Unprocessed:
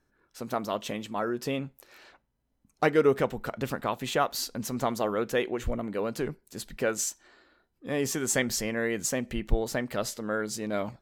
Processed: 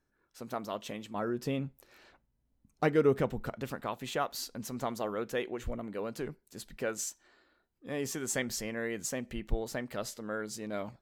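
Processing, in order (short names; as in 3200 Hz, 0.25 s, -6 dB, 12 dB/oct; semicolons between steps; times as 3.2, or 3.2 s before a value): 1.14–3.55 low shelf 290 Hz +9 dB; gain -6.5 dB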